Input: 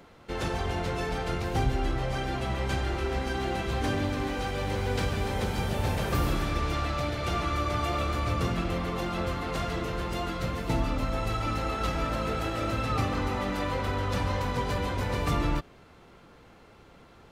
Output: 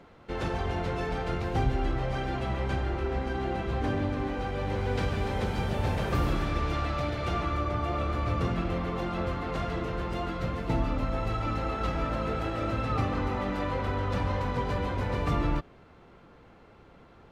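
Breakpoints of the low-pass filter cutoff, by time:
low-pass filter 6 dB per octave
0:02.45 2,700 Hz
0:02.88 1,500 Hz
0:04.48 1,500 Hz
0:05.13 3,200 Hz
0:07.22 3,200 Hz
0:07.78 1,200 Hz
0:08.38 2,200 Hz

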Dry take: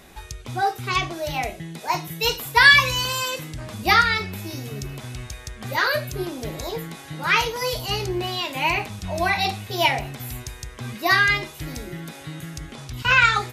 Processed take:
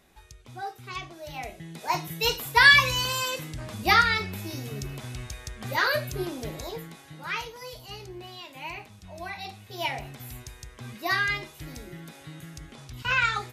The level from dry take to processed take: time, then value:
0:01.18 −13.5 dB
0:01.92 −3 dB
0:06.33 −3 dB
0:07.64 −15.5 dB
0:09.47 −15.5 dB
0:10.05 −8 dB

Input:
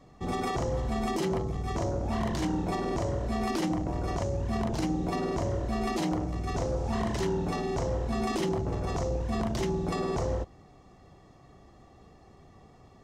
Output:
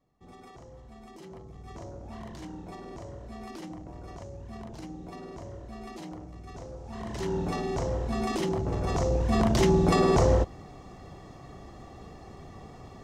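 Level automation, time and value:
0:01.09 −19 dB
0:01.71 −12 dB
0:06.86 −12 dB
0:07.36 0 dB
0:08.50 0 dB
0:09.75 +8.5 dB

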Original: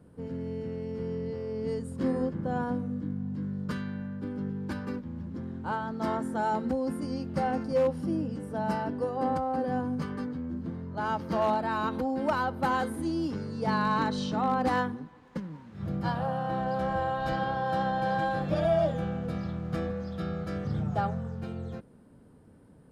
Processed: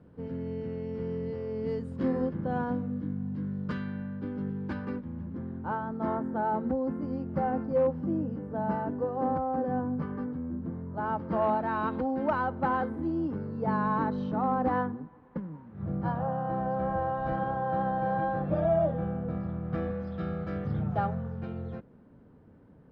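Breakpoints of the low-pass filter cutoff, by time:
0:04.54 3,300 Hz
0:05.94 1,400 Hz
0:11.12 1,400 Hz
0:11.98 2,400 Hz
0:13.16 1,300 Hz
0:19.49 1,300 Hz
0:19.92 2,500 Hz

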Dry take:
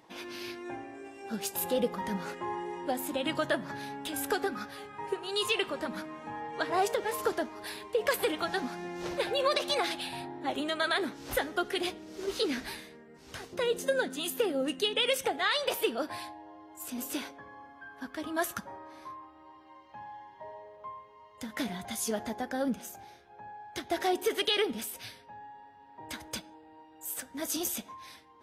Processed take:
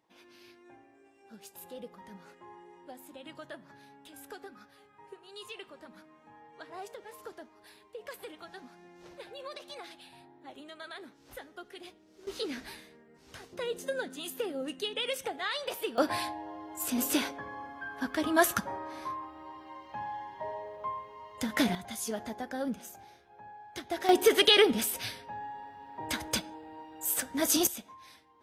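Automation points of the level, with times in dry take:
−15.5 dB
from 0:12.27 −5.5 dB
from 0:15.98 +7 dB
from 0:21.75 −3 dB
from 0:24.09 +7 dB
from 0:27.67 −5 dB

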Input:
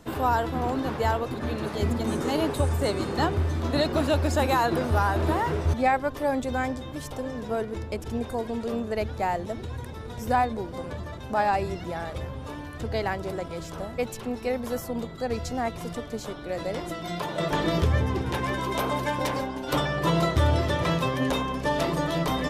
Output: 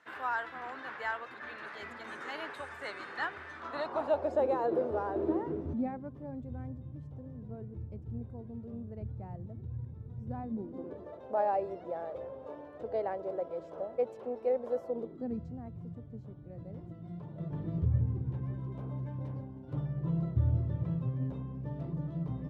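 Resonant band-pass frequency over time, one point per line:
resonant band-pass, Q 2.6
0:03.50 1,700 Hz
0:04.47 470 Hz
0:05.06 470 Hz
0:06.39 120 Hz
0:10.22 120 Hz
0:11.16 550 Hz
0:14.86 550 Hz
0:15.60 120 Hz

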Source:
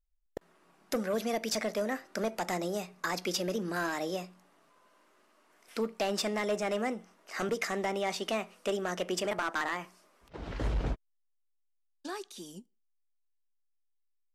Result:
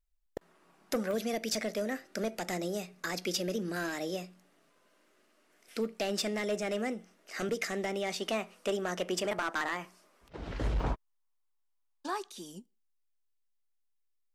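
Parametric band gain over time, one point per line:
parametric band 990 Hz 0.8 octaves
0 dB
from 0:01.11 −9 dB
from 0:08.20 −1.5 dB
from 0:10.80 +10.5 dB
from 0:12.30 0 dB

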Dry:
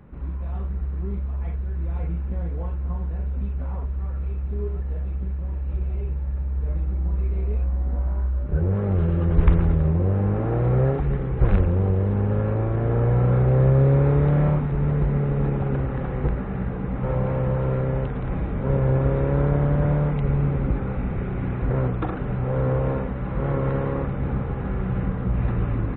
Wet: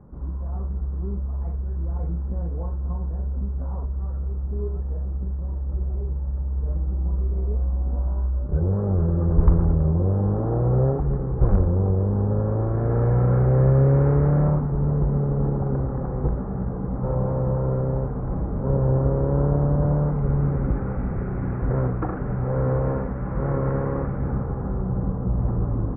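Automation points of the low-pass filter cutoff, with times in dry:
low-pass filter 24 dB per octave
0:12.43 1,200 Hz
0:12.99 1,700 Hz
0:14.13 1,700 Hz
0:14.79 1,200 Hz
0:19.87 1,200 Hz
0:20.68 1,700 Hz
0:24.15 1,700 Hz
0:24.87 1,100 Hz

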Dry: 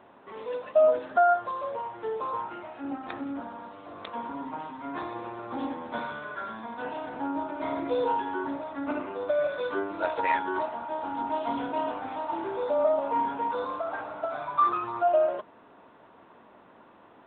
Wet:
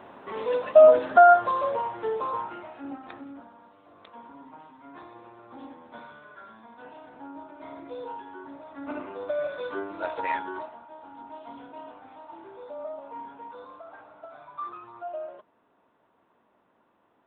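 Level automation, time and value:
0:01.57 +7 dB
0:02.75 −1.5 dB
0:03.53 −11 dB
0:08.48 −11 dB
0:08.98 −3 dB
0:10.40 −3 dB
0:10.88 −13 dB

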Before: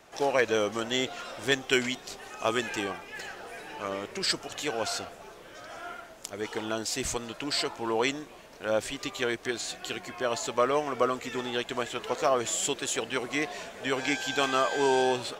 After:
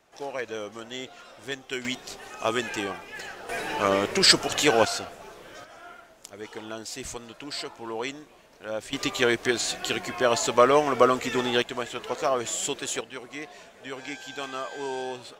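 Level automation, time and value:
−8 dB
from 0:01.85 +1.5 dB
from 0:03.49 +11 dB
from 0:04.85 +2.5 dB
from 0:05.64 −5 dB
from 0:08.93 +7 dB
from 0:11.62 0 dB
from 0:13.01 −8 dB

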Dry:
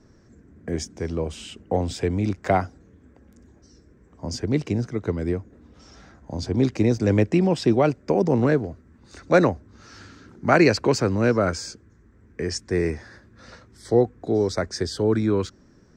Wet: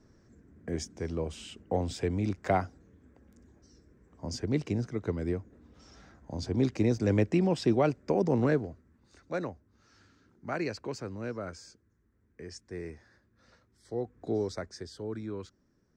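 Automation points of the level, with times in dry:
0:08.56 −6.5 dB
0:09.32 −17 dB
0:13.95 −17 dB
0:14.28 −7.5 dB
0:14.85 −16.5 dB

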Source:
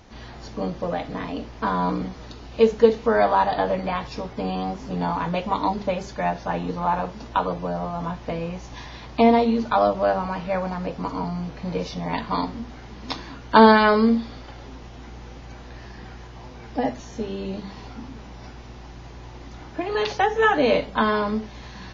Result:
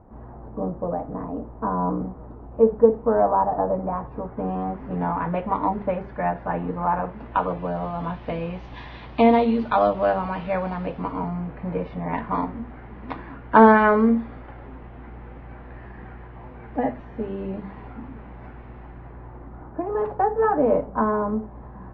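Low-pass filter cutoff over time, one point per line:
low-pass filter 24 dB per octave
0:03.86 1,100 Hz
0:04.84 2,000 Hz
0:07.04 2,000 Hz
0:07.87 3,400 Hz
0:10.78 3,400 Hz
0:11.45 2,100 Hz
0:18.82 2,100 Hz
0:19.90 1,200 Hz

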